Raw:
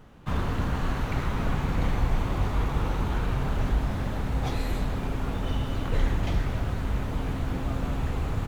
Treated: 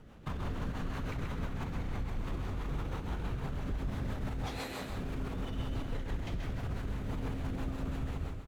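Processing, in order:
fade-out on the ending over 0.52 s
0:04.46–0:04.90: high-pass filter 580 Hz 6 dB per octave
in parallel at 0 dB: compressor whose output falls as the input rises −28 dBFS
on the sum: brickwall limiter −20 dBFS, peak gain reduction 10 dB
rotating-speaker cabinet horn 6 Hz
on a send: single-tap delay 132 ms −6.5 dB
on the sum: level −8 dB

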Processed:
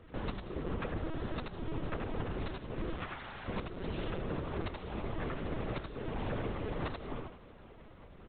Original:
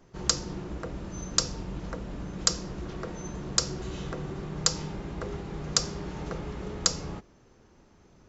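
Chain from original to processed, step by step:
lower of the sound and its delayed copy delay 2.4 ms
0:02.96–0:03.48: high-pass filter 1,000 Hz 12 dB per octave
downward compressor 12 to 1, threshold −38 dBFS, peak gain reduction 20.5 dB
repeating echo 87 ms, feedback 24%, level −4.5 dB
linear-prediction vocoder at 8 kHz pitch kept
level +4.5 dB

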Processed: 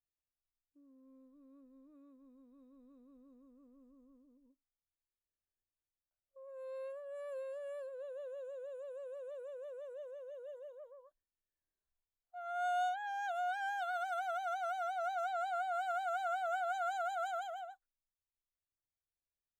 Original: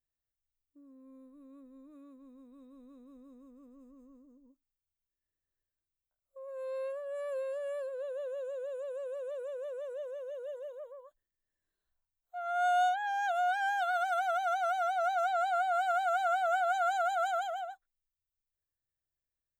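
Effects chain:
one half of a high-frequency compander decoder only
level −7 dB

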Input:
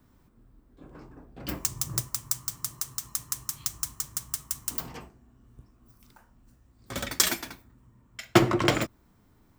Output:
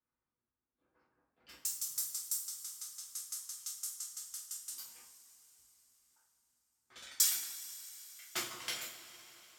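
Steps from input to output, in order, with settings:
harmonic and percussive parts rebalanced harmonic −9 dB
low-pass that shuts in the quiet parts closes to 1,500 Hz, open at −26 dBFS
first-order pre-emphasis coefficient 0.97
coupled-rooms reverb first 0.45 s, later 4.4 s, from −18 dB, DRR −5 dB
level −8.5 dB

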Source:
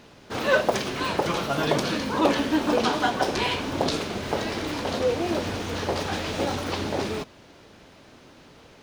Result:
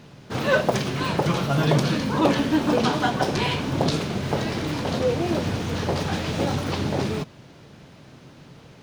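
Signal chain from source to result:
parametric band 140 Hz +12.5 dB 1 octave

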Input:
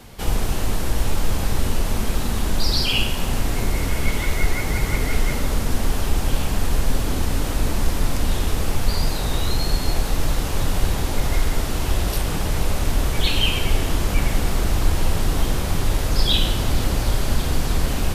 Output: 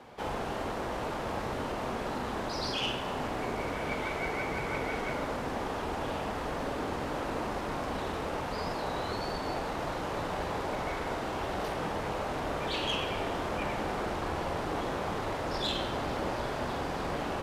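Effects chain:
resonant band-pass 740 Hz, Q 0.76
tube saturation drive 22 dB, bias 0.4
on a send: flutter between parallel walls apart 8.5 metres, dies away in 0.28 s
on the sum: wrong playback speed 24 fps film run at 25 fps

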